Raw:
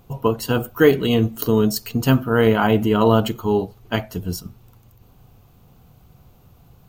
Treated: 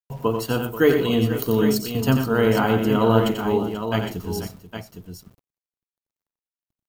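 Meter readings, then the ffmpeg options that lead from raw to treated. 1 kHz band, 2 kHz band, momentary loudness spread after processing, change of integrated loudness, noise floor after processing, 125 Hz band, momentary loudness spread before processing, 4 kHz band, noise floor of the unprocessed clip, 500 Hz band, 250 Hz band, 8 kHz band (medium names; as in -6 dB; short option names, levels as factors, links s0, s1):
-2.0 dB, -2.0 dB, 17 LU, -2.0 dB, under -85 dBFS, -2.5 dB, 10 LU, -2.0 dB, -53 dBFS, -2.0 dB, -1.5 dB, -2.0 dB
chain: -filter_complex "[0:a]bandreject=f=50:t=h:w=6,bandreject=f=100:t=h:w=6,bandreject=f=150:t=h:w=6,aeval=exprs='val(0)*gte(abs(val(0)),0.00891)':c=same,agate=range=0.0501:threshold=0.00447:ratio=16:detection=peak,asplit=2[s0][s1];[s1]aecho=0:1:89|122|485|811:0.473|0.237|0.2|0.376[s2];[s0][s2]amix=inputs=2:normalize=0,volume=0.668"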